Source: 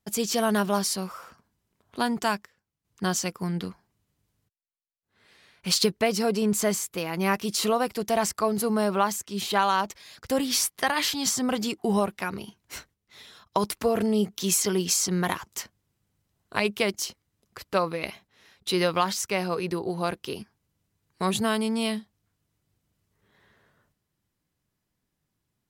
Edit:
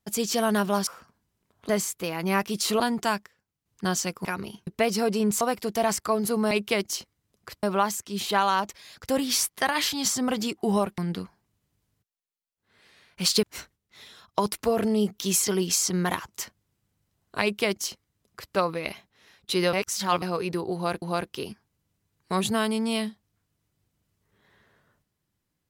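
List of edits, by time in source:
0.87–1.17 cut
3.44–5.89 swap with 12.19–12.61
6.63–7.74 move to 1.99
16.6–17.72 copy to 8.84
18.91–19.4 reverse
19.92–20.2 loop, 2 plays

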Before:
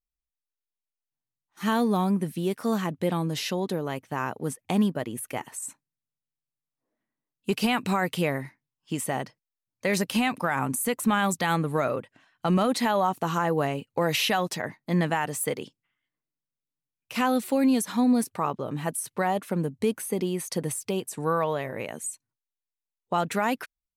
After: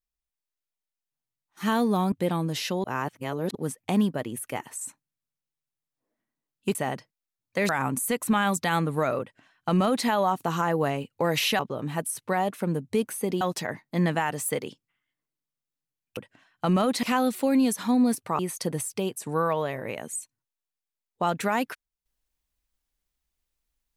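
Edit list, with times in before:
2.12–2.93 cut
3.65–4.36 reverse
7.56–9.03 cut
9.97–10.46 cut
11.98–12.84 copy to 17.12
18.48–20.3 move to 14.36

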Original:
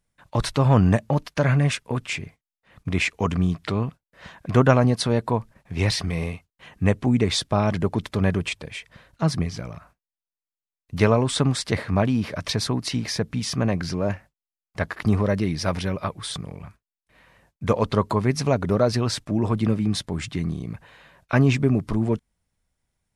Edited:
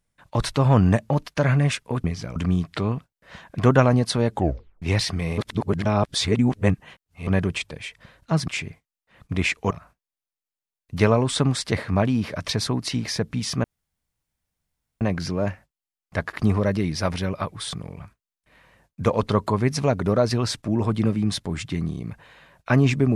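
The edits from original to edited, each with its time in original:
2.04–3.27 swap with 9.39–9.71
5.22 tape stop 0.51 s
6.29–8.18 reverse
13.64 insert room tone 1.37 s

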